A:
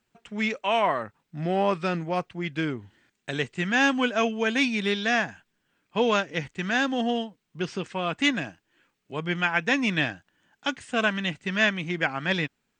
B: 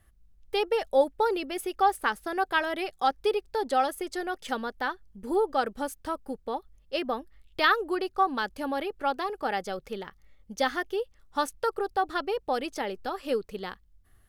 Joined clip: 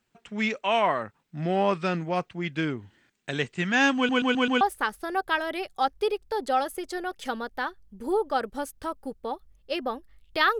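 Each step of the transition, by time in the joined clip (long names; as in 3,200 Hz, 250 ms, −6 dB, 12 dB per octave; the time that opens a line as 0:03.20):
A
0:03.96: stutter in place 0.13 s, 5 plays
0:04.61: continue with B from 0:01.84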